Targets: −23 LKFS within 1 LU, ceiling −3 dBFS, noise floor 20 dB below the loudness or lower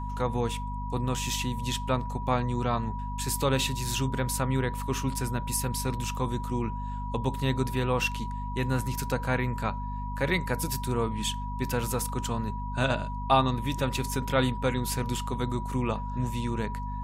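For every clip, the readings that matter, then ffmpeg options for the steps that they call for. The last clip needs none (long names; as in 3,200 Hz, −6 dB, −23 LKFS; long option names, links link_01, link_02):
mains hum 50 Hz; hum harmonics up to 250 Hz; level of the hum −32 dBFS; interfering tone 970 Hz; level of the tone −37 dBFS; integrated loudness −29.5 LKFS; sample peak −10.0 dBFS; target loudness −23.0 LKFS
→ -af "bandreject=frequency=50:width_type=h:width=4,bandreject=frequency=100:width_type=h:width=4,bandreject=frequency=150:width_type=h:width=4,bandreject=frequency=200:width_type=h:width=4,bandreject=frequency=250:width_type=h:width=4"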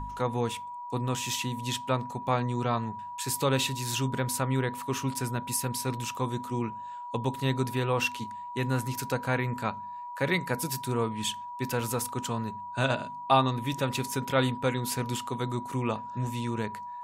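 mains hum none found; interfering tone 970 Hz; level of the tone −37 dBFS
→ -af "bandreject=frequency=970:width=30"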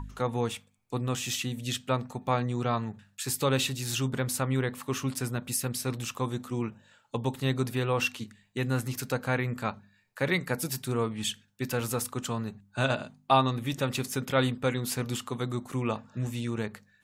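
interfering tone none found; integrated loudness −31.0 LKFS; sample peak −10.0 dBFS; target loudness −23.0 LKFS
→ -af "volume=8dB,alimiter=limit=-3dB:level=0:latency=1"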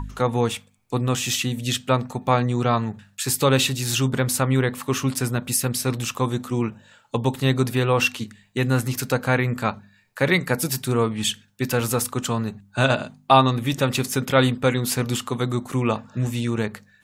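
integrated loudness −23.0 LKFS; sample peak −3.0 dBFS; background noise floor −58 dBFS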